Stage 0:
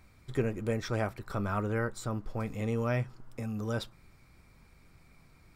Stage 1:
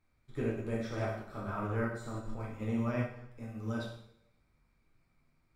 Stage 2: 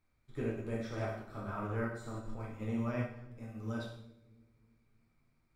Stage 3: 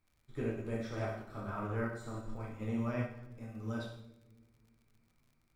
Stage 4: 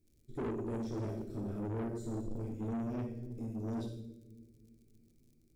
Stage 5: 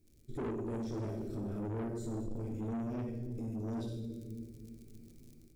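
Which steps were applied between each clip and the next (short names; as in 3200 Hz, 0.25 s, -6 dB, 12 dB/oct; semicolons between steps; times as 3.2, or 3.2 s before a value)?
high shelf 4800 Hz -5.5 dB; plate-style reverb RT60 1 s, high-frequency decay 0.95×, DRR -5 dB; upward expander 1.5:1, over -45 dBFS; gain -7.5 dB
analogue delay 0.318 s, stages 1024, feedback 49%, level -20 dB; gain -2.5 dB
crackle 64/s -57 dBFS
EQ curve 150 Hz 0 dB, 380 Hz +7 dB, 970 Hz -26 dB, 6300 Hz -2 dB; in parallel at +1 dB: vocal rider within 4 dB 0.5 s; on the sum: soft clip -32.5 dBFS, distortion -7 dB; gain -1.5 dB
AGC gain up to 6.5 dB; limiter -39 dBFS, peak gain reduction 11.5 dB; gain +4.5 dB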